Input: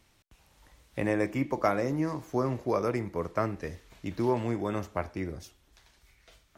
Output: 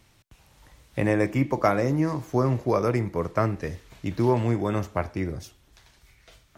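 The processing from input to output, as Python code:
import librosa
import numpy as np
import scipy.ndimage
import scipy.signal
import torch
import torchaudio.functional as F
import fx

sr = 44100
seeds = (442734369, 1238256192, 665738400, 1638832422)

y = fx.peak_eq(x, sr, hz=120.0, db=5.5, octaves=0.84)
y = y * librosa.db_to_amplitude(4.5)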